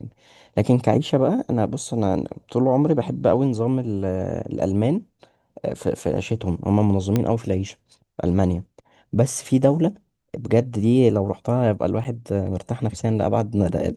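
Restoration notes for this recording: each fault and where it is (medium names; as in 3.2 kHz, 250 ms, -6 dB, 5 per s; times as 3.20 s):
7.16 s: pop -8 dBFS
12.04–12.05 s: dropout 9.2 ms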